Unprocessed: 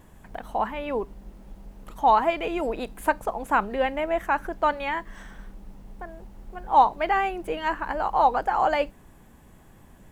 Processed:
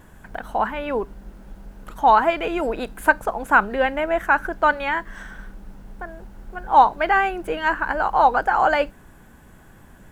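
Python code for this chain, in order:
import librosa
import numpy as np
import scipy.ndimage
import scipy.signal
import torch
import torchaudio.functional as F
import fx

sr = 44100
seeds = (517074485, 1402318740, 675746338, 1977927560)

y = fx.peak_eq(x, sr, hz=1500.0, db=9.0, octaves=0.32)
y = F.gain(torch.from_numpy(y), 3.5).numpy()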